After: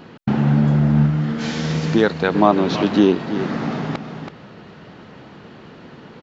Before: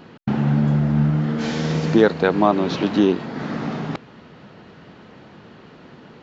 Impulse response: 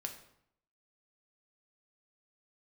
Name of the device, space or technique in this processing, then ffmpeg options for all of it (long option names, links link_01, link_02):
ducked delay: -filter_complex "[0:a]asplit=3[link_01][link_02][link_03];[link_02]adelay=327,volume=-7.5dB[link_04];[link_03]apad=whole_len=288723[link_05];[link_04][link_05]sidechaincompress=threshold=-26dB:ratio=8:attack=16:release=311[link_06];[link_01][link_06]amix=inputs=2:normalize=0,asettb=1/sr,asplit=3[link_07][link_08][link_09];[link_07]atrim=end=1.064[link_10];[link_08]atrim=start=1.06:end=2.35,asetpts=PTS-STARTPTS,afade=type=in:duration=0.004:curve=qsin,afade=type=out:start_time=1.286:duration=0.004:curve=qsin,equalizer=frequency=480:width_type=o:width=2.6:gain=-5[link_11];[link_09]atrim=start=2.346[link_12];[link_10][link_11]acrossfade=duration=0.004:curve1=hsin:curve2=qsin[link_13];[link_13][link_12]acrossfade=duration=0.004:curve1=qsin:curve2=hsin,volume=2.5dB"